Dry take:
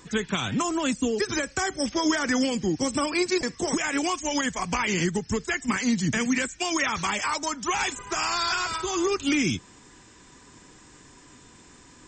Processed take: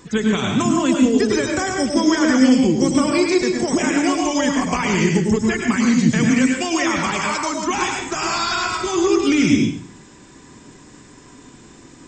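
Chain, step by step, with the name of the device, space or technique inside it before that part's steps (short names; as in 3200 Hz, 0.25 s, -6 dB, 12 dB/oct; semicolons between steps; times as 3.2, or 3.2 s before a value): bathroom (reverb RT60 0.55 s, pre-delay 95 ms, DRR 1 dB); bell 240 Hz +5.5 dB 2.7 oct; gain +2 dB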